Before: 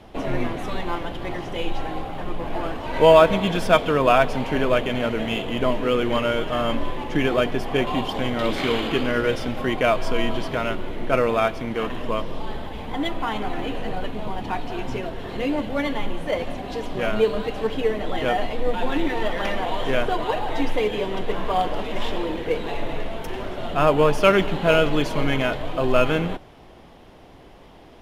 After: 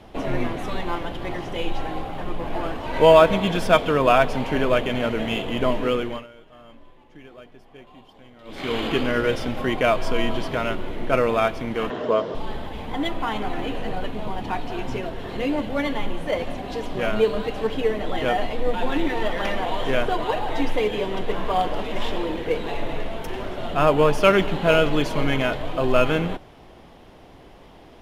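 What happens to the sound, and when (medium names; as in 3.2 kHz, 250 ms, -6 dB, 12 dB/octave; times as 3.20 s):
5.86–8.86 s: dip -24 dB, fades 0.41 s
11.90–12.35 s: cabinet simulation 140–6800 Hz, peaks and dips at 430 Hz +9 dB, 640 Hz +7 dB, 1.4 kHz +6 dB, 2.5 kHz -6 dB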